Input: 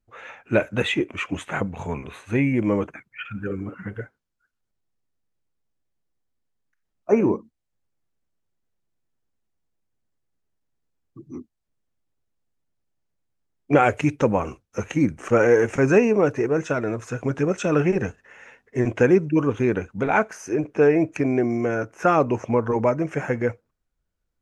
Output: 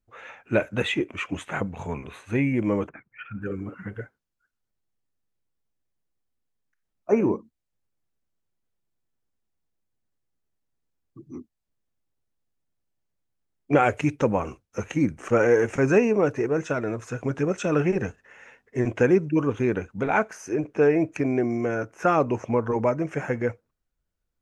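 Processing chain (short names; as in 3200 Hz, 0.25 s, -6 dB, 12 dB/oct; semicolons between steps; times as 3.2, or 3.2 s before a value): 2.89–3.42 LPF 1900 Hz 12 dB/oct; gain -2.5 dB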